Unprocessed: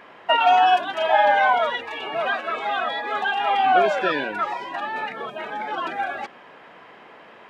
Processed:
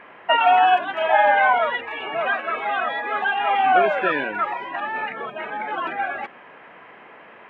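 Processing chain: resonant high shelf 3.6 kHz -14 dB, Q 1.5

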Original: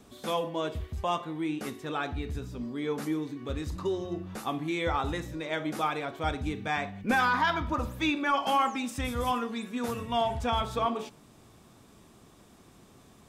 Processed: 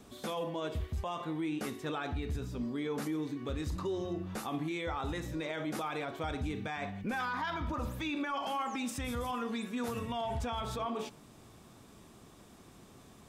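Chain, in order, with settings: peak limiter -28 dBFS, peak gain reduction 11.5 dB

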